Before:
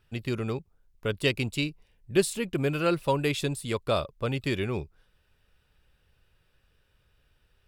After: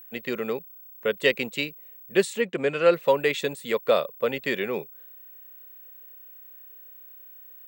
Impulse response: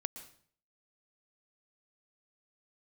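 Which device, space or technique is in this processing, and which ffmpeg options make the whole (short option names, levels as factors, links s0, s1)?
old television with a line whistle: -filter_complex "[0:a]highpass=f=200:w=0.5412,highpass=f=200:w=1.3066,equalizer=f=310:t=q:w=4:g=-8,equalizer=f=500:t=q:w=4:g=9,equalizer=f=1900:t=q:w=4:g=8,equalizer=f=5100:t=q:w=4:g=-7,lowpass=f=7800:w=0.5412,lowpass=f=7800:w=1.3066,aeval=exprs='val(0)+0.00501*sin(2*PI*15734*n/s)':c=same,asettb=1/sr,asplit=3[s0][s1][s2];[s0]atrim=end=2.414[s3];[s1]atrim=start=2.41:end=2.94,asetpts=PTS-STARTPTS,afade=t=in:d=0.004:c=qsin,afade=t=out:st=0.526:d=0.004:c=qsin,lowpass=f=10000:w=0.5412,lowpass=f=10000:w=1.3066[s4];[s2]atrim=start=2.936[s5];[s3][s4]acrossfade=d=0.004:c1=hsin:c2=qsin[s6];[s6][s5]acrossfade=d=0.004:c1=qsin:c2=hsin,volume=1.26"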